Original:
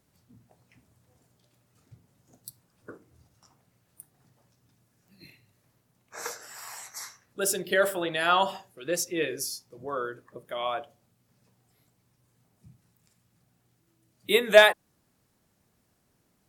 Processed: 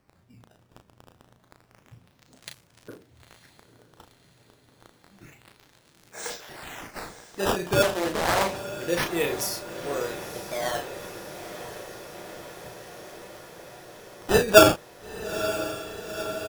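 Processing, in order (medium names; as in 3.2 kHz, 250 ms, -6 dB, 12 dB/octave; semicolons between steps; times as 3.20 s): peaking EQ 1.2 kHz -10 dB 0.62 oct; crackle 90 per s -41 dBFS; decimation with a swept rate 12×, swing 160% 0.29 Hz; doubling 35 ms -6 dB; echo that smears into a reverb 939 ms, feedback 74%, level -12 dB; 7.82–8.56 s: loudspeaker Doppler distortion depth 0.55 ms; trim +2.5 dB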